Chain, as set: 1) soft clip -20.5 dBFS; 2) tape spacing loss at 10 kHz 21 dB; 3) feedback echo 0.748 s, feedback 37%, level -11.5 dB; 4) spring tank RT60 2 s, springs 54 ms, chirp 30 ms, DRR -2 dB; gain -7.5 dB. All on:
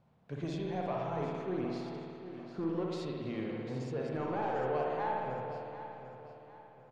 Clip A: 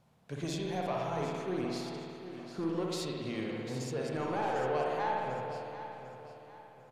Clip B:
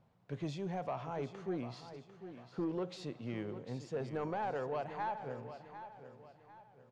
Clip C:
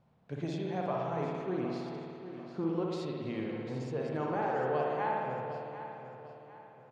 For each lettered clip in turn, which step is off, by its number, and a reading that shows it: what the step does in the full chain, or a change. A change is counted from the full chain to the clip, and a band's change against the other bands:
2, 4 kHz band +7.0 dB; 4, loudness change -4.0 LU; 1, distortion -16 dB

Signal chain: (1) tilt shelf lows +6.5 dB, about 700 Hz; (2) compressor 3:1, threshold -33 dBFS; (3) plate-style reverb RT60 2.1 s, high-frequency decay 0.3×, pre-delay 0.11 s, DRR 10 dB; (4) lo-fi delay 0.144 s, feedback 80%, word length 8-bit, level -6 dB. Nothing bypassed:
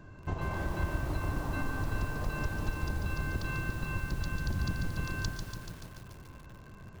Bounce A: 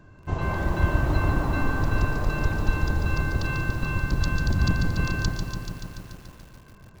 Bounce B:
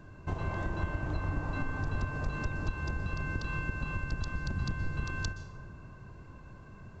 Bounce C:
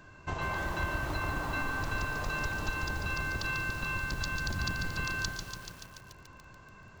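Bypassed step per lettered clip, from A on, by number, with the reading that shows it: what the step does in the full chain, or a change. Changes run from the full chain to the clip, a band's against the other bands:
2, mean gain reduction 7.0 dB; 4, 8 kHz band -4.0 dB; 1, 125 Hz band -8.0 dB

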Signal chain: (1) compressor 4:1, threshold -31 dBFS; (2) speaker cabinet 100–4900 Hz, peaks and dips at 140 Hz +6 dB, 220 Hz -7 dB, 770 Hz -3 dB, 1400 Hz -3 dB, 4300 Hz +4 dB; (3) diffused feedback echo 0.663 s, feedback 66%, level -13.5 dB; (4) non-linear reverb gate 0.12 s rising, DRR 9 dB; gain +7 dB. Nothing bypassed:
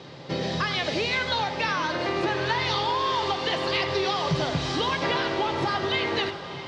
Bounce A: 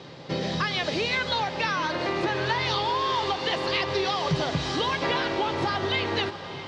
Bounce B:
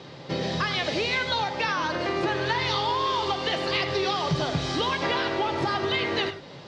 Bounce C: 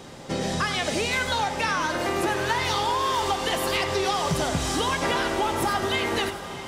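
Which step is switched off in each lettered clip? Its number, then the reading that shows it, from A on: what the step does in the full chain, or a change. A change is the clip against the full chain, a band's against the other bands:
4, echo-to-direct -6.5 dB to -11.0 dB; 3, echo-to-direct -6.5 dB to -9.0 dB; 2, 8 kHz band +10.5 dB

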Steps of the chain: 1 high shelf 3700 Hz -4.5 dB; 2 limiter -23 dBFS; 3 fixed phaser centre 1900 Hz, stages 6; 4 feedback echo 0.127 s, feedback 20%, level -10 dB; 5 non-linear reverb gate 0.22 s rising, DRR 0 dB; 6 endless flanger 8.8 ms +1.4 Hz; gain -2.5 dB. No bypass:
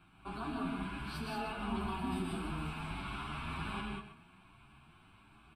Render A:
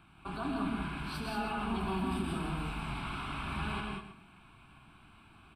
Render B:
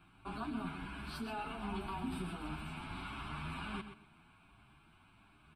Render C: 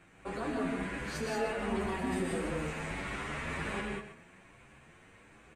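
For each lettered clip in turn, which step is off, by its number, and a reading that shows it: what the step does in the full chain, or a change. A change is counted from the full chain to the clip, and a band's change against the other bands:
6, loudness change +3.0 LU; 5, momentary loudness spread change -2 LU; 3, 500 Hz band +8.5 dB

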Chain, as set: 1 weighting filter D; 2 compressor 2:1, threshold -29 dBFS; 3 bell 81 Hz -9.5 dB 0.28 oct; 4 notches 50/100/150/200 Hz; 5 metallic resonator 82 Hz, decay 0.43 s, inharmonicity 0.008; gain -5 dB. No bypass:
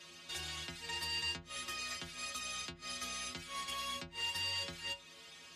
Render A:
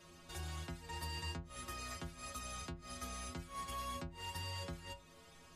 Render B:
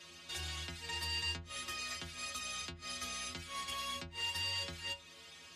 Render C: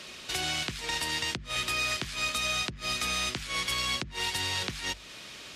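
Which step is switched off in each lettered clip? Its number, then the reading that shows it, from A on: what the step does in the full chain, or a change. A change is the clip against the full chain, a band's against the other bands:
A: 1, 4 kHz band -11.0 dB; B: 3, 125 Hz band +5.0 dB; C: 5, 125 Hz band +2.5 dB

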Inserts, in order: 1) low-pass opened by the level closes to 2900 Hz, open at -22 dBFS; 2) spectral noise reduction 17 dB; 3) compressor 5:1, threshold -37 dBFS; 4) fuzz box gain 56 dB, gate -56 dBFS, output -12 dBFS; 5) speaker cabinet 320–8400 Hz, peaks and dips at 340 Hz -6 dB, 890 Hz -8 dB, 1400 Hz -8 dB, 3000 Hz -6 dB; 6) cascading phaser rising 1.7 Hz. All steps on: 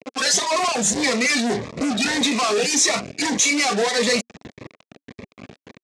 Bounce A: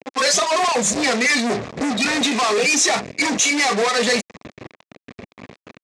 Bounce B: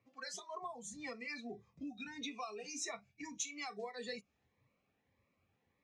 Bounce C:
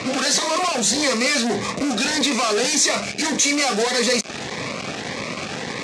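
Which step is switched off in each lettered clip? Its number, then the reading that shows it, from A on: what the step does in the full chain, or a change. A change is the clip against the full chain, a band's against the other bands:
6, 1 kHz band +3.0 dB; 4, distortion -4 dB; 2, momentary loudness spread change +4 LU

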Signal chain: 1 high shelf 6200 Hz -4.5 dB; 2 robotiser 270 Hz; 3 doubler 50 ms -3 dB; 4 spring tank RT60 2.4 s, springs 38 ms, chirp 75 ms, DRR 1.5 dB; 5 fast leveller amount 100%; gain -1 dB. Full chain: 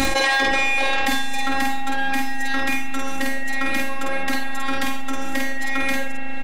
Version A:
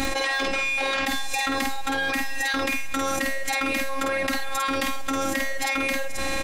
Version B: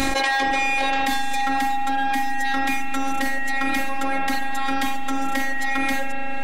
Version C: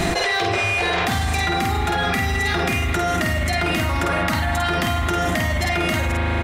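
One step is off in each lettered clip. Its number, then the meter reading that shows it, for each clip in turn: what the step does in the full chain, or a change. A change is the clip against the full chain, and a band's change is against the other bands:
4, momentary loudness spread change -5 LU; 3, 1 kHz band +5.5 dB; 2, 500 Hz band +3.5 dB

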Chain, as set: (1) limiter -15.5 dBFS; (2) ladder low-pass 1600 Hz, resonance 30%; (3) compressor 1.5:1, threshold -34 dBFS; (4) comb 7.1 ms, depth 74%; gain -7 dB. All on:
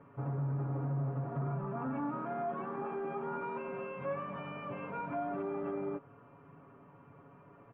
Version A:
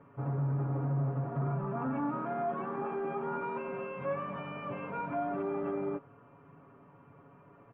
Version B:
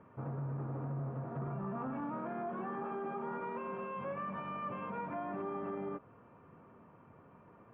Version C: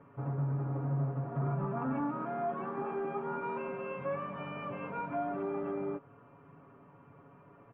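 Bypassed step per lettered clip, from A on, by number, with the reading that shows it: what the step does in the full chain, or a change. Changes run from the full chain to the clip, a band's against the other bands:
3, momentary loudness spread change -16 LU; 4, 125 Hz band -2.5 dB; 1, mean gain reduction 2.0 dB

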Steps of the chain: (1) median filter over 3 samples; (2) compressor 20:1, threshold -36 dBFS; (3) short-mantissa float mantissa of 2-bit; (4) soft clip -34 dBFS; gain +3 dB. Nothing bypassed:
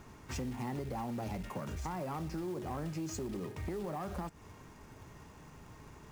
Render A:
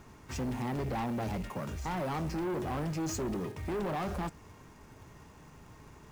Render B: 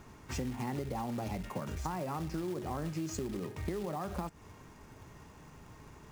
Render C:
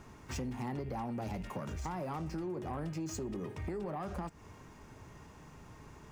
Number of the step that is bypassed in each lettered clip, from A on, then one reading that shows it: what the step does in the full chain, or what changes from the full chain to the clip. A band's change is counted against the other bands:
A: 2, mean gain reduction 5.5 dB; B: 4, distortion -17 dB; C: 3, distortion -20 dB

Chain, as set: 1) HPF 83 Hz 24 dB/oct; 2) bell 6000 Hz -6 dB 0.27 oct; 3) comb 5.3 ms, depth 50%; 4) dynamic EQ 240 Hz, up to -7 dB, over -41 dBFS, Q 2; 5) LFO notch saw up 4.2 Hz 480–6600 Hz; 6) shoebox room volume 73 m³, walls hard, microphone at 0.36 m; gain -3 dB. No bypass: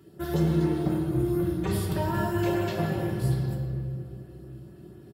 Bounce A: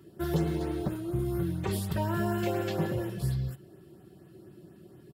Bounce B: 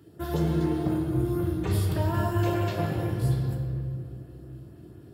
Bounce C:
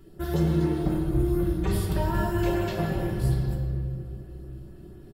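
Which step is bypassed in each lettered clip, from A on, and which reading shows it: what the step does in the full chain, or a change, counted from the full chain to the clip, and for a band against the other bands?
6, momentary loudness spread change -15 LU; 3, 125 Hz band +2.5 dB; 1, momentary loudness spread change -1 LU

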